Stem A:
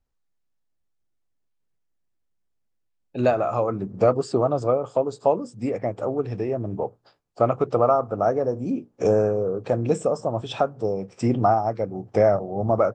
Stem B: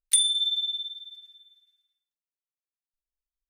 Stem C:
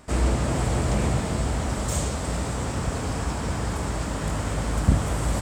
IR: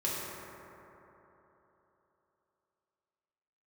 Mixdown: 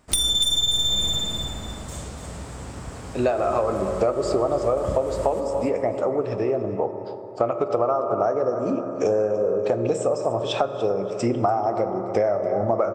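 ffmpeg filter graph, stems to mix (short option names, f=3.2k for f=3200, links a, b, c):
-filter_complex "[0:a]bass=f=250:g=-12,treble=f=4k:g=1,lowshelf=f=180:g=5.5,volume=3dB,asplit=3[a][b][c];[b]volume=-13.5dB[d];[c]volume=-14dB[e];[1:a]aeval=exprs='if(lt(val(0),0),0.251*val(0),val(0))':c=same,equalizer=f=4.2k:t=o:w=2.5:g=7,dynaudnorm=f=170:g=3:m=15dB,volume=1dB,asplit=2[f][g];[g]volume=-5.5dB[h];[2:a]volume=-9dB,asplit=2[i][j];[j]volume=-8.5dB[k];[3:a]atrim=start_sample=2205[l];[d][l]afir=irnorm=-1:irlink=0[m];[e][h][k]amix=inputs=3:normalize=0,aecho=0:1:290|580|870|1160:1|0.3|0.09|0.027[n];[a][f][i][m][n]amix=inputs=5:normalize=0,acompressor=threshold=-18dB:ratio=6"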